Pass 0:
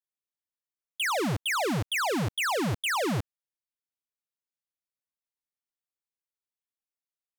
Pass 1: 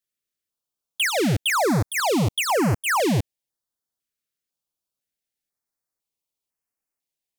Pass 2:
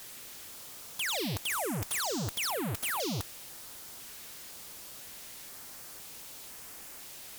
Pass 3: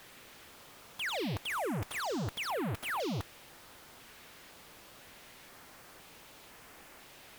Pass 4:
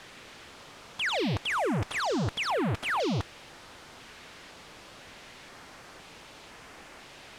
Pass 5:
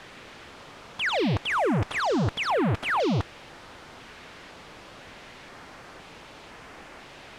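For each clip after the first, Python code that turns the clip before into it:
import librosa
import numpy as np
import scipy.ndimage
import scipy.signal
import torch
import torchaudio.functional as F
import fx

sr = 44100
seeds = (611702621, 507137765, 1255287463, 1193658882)

y1 = fx.filter_held_notch(x, sr, hz=2.0, low_hz=870.0, high_hz=3600.0)
y1 = y1 * librosa.db_to_amplitude(8.0)
y2 = np.sign(y1) * np.sqrt(np.mean(np.square(y1)))
y2 = fx.level_steps(y2, sr, step_db=14)
y2 = fx.cheby_harmonics(y2, sr, harmonics=(5, 7), levels_db=(-22, -20), full_scale_db=-26.5)
y2 = y2 * librosa.db_to_amplitude(-3.5)
y3 = fx.bass_treble(y2, sr, bass_db=-1, treble_db=-13)
y4 = scipy.signal.sosfilt(scipy.signal.butter(2, 6900.0, 'lowpass', fs=sr, output='sos'), y3)
y4 = y4 * librosa.db_to_amplitude(6.5)
y5 = fx.high_shelf(y4, sr, hz=4100.0, db=-8.5)
y5 = y5 * librosa.db_to_amplitude(4.5)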